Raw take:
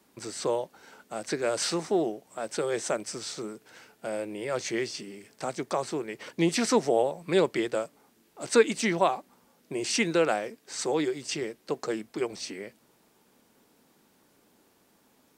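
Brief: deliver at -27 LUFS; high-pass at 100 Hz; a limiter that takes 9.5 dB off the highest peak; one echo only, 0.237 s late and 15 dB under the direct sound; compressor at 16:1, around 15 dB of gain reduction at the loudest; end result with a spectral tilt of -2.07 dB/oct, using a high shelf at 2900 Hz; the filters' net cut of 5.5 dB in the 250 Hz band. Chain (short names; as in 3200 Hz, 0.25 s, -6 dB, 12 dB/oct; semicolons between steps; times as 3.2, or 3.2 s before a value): HPF 100 Hz; bell 250 Hz -8.5 dB; high shelf 2900 Hz +6.5 dB; compressor 16:1, threshold -31 dBFS; limiter -28.5 dBFS; echo 0.237 s -15 dB; gain +12 dB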